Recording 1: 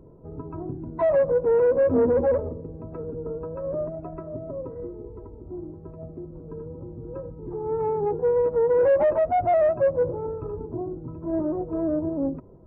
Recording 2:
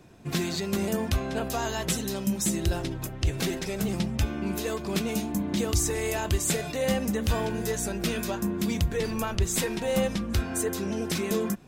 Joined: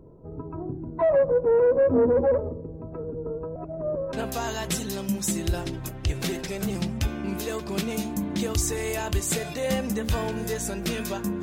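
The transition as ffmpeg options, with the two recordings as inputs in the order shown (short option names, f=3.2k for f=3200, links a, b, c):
-filter_complex "[0:a]apad=whole_dur=11.42,atrim=end=11.42,asplit=2[a][b];[a]atrim=end=3.562[c];[b]atrim=start=3.558:end=4.132,asetpts=PTS-STARTPTS,areverse[d];[1:a]atrim=start=1.308:end=8.6[e];[c][d]acrossfade=d=0.004:c1=hsin:c2=hsin[f];[f][e]acrossfade=d=0.004:c1=hsin:c2=hsin"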